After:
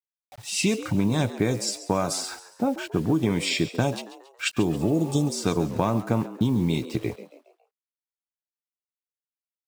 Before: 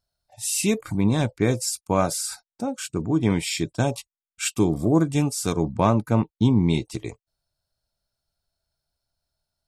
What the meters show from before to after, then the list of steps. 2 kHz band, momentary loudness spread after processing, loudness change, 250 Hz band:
+1.0 dB, 7 LU, -2.0 dB, -2.0 dB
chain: HPF 90 Hz 12 dB/oct; low-pass opened by the level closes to 1100 Hz, open at -16 dBFS; spectral repair 4.84–5.24, 750–3000 Hz after; high shelf 6800 Hz +5 dB; in parallel at -2 dB: limiter -12.5 dBFS, peak gain reduction 7.5 dB; on the sum: compressor 8:1, threshold -19 dBFS, peak gain reduction 10 dB; bit-crush 8-bit; on a send: frequency-shifting echo 0.138 s, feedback 42%, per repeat +88 Hz, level -15 dB

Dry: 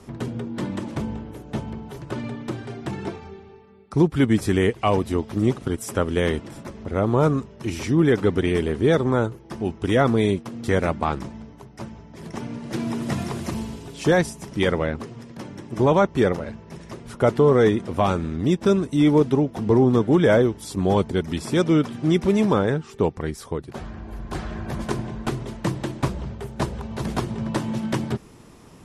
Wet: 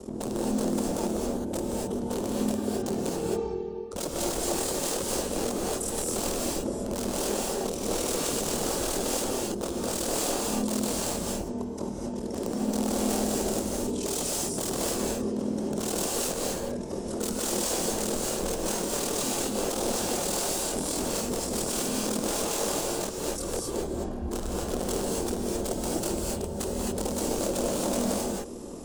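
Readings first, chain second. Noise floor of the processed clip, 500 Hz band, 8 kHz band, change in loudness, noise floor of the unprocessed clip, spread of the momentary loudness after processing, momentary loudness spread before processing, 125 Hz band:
-35 dBFS, -7.5 dB, +13.0 dB, -6.5 dB, -46 dBFS, 5 LU, 16 LU, -14.0 dB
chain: wrapped overs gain 23 dB; low shelf 190 Hz +5 dB; limiter -28.5 dBFS, peak gain reduction 9 dB; graphic EQ 125/250/500/2000/8000 Hz -9/+6/+11/-9/+10 dB; ring modulator 20 Hz; non-linear reverb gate 0.29 s rising, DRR -3 dB

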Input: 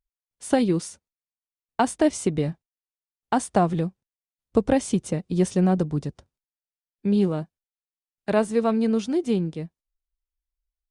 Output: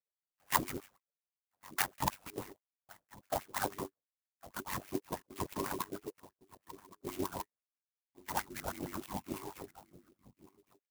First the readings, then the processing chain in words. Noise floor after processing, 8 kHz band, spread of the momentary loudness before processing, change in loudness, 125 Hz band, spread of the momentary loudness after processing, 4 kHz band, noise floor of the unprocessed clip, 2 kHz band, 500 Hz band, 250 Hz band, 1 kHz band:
under -85 dBFS, -7.5 dB, 14 LU, -15.5 dB, -20.5 dB, 19 LU, -6.5 dB, under -85 dBFS, -6.0 dB, -19.0 dB, -22.0 dB, -9.5 dB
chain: band inversion scrambler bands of 500 Hz; bell 79 Hz -8.5 dB 1.9 oct; LPC vocoder at 8 kHz whisper; bell 420 Hz -13 dB 1.3 oct; outdoor echo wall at 190 m, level -18 dB; ring modulator 48 Hz; rotary speaker horn 7 Hz, later 0.6 Hz, at 7.34; LFO band-pass sine 6.2 Hz 520–2500 Hz; clock jitter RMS 0.078 ms; gain +9 dB

